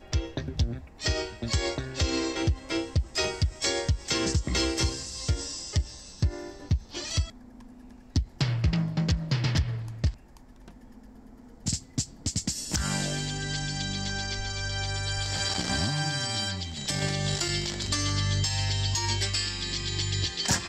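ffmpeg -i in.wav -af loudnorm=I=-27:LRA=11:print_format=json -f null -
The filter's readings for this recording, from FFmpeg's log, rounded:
"input_i" : "-28.7",
"input_tp" : "-12.4",
"input_lra" : "4.4",
"input_thresh" : "-39.0",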